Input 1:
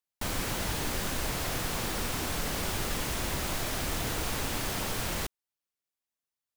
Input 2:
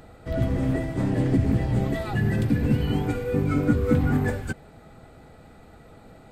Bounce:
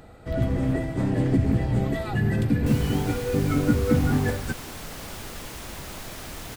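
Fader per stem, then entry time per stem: -5.5, 0.0 dB; 2.45, 0.00 s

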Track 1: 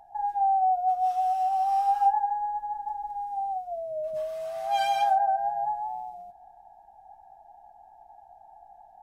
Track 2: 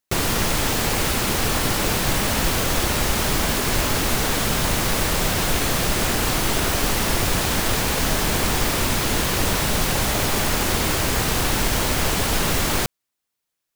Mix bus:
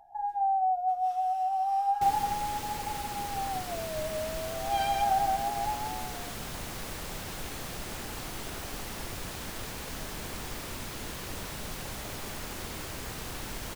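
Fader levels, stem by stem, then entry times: -3.5, -17.5 dB; 0.00, 1.90 s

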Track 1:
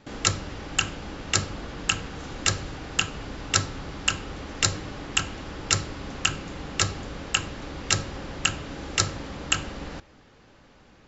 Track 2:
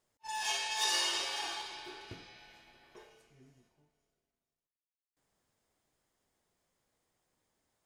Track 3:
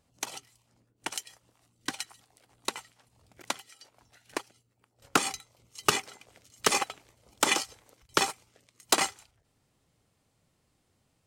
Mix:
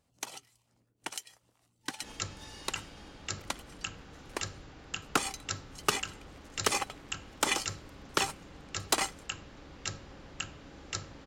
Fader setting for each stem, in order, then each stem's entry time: -14.0, -19.5, -4.0 dB; 1.95, 1.60, 0.00 s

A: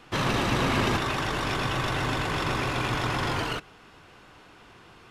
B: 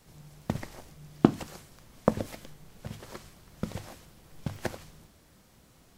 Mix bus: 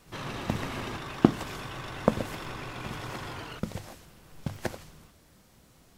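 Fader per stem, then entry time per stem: -11.5, +0.5 dB; 0.00, 0.00 s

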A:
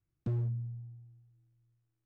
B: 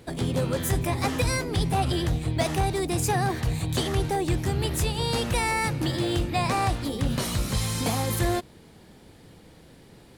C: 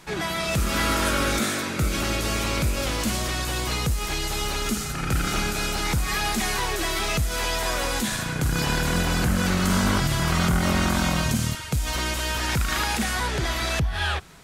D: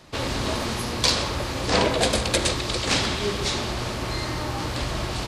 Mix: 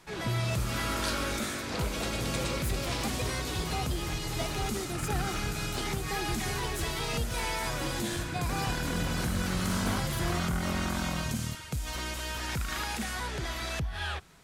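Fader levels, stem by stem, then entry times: +1.5, -10.5, -9.0, -16.0 dB; 0.00, 2.00, 0.00, 0.00 s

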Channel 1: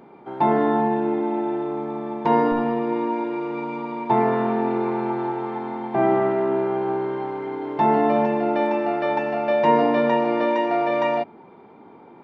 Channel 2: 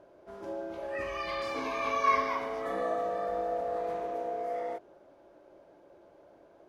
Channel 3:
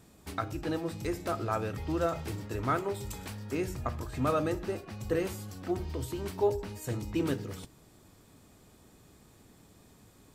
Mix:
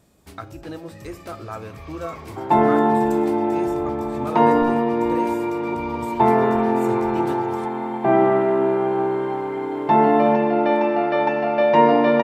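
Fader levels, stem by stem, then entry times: +3.0, -13.0, -1.5 dB; 2.10, 0.00, 0.00 s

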